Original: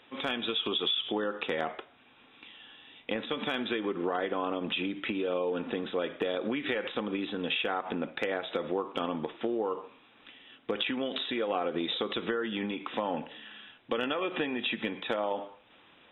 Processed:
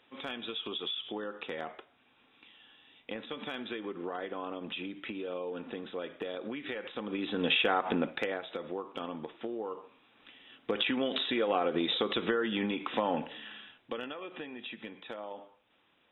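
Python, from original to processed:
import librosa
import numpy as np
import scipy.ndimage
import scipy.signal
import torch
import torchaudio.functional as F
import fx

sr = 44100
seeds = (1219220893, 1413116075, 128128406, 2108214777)

y = fx.gain(x, sr, db=fx.line((6.92, -7.0), (7.45, 3.5), (7.99, 3.5), (8.49, -6.5), (9.83, -6.5), (10.92, 1.5), (13.51, 1.5), (14.17, -11.0)))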